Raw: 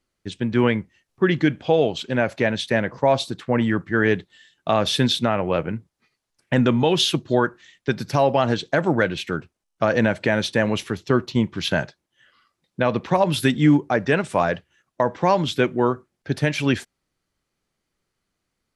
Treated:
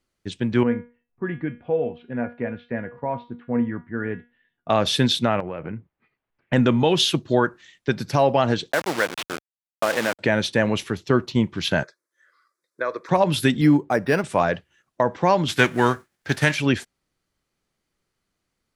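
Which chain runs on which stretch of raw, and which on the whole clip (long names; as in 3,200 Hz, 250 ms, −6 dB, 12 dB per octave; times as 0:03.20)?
0:00.63–0:04.70: low-pass filter 2,200 Hz 24 dB per octave + low-shelf EQ 330 Hz +5.5 dB + tuned comb filter 240 Hz, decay 0.31 s, mix 80%
0:05.40–0:06.53: low-pass filter 2,700 Hz 24 dB per octave + downward compressor 12 to 1, threshold −26 dBFS
0:08.72–0:10.19: hold until the input has moved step −21 dBFS + meter weighting curve A + one half of a high-frequency compander decoder only
0:11.83–0:13.09: high-pass filter 180 Hz 24 dB per octave + low-shelf EQ 370 Hz −10 dB + phaser with its sweep stopped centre 790 Hz, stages 6
0:13.61–0:14.24: low-shelf EQ 68 Hz −9.5 dB + linearly interpolated sample-rate reduction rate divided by 6×
0:15.48–0:16.54: spectral envelope flattened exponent 0.6 + parametric band 1,700 Hz +6.5 dB 0.67 octaves
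whole clip: no processing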